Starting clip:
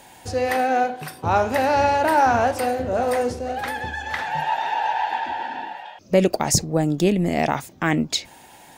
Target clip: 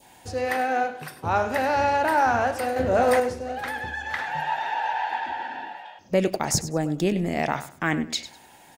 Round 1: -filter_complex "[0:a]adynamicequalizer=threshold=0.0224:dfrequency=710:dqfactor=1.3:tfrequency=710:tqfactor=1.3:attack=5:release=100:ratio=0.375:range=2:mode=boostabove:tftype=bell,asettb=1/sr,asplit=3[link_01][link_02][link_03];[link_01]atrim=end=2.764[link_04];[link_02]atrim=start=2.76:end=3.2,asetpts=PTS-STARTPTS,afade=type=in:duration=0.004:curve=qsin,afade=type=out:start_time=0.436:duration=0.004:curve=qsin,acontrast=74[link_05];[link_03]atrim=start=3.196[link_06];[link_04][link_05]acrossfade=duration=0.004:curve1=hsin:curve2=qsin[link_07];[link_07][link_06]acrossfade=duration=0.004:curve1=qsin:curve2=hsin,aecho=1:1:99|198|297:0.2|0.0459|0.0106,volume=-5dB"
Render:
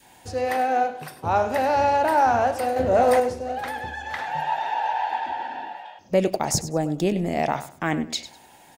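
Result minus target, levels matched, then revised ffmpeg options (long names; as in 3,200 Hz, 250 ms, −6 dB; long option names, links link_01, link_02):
2,000 Hz band −4.5 dB
-filter_complex "[0:a]adynamicequalizer=threshold=0.0224:dfrequency=1600:dqfactor=1.3:tfrequency=1600:tqfactor=1.3:attack=5:release=100:ratio=0.375:range=2:mode=boostabove:tftype=bell,asettb=1/sr,asplit=3[link_01][link_02][link_03];[link_01]atrim=end=2.764[link_04];[link_02]atrim=start=2.76:end=3.2,asetpts=PTS-STARTPTS,afade=type=in:duration=0.004:curve=qsin,afade=type=out:start_time=0.436:duration=0.004:curve=qsin,acontrast=74[link_05];[link_03]atrim=start=3.196[link_06];[link_04][link_05]acrossfade=duration=0.004:curve1=hsin:curve2=qsin[link_07];[link_07][link_06]acrossfade=duration=0.004:curve1=qsin:curve2=hsin,aecho=1:1:99|198|297:0.2|0.0459|0.0106,volume=-5dB"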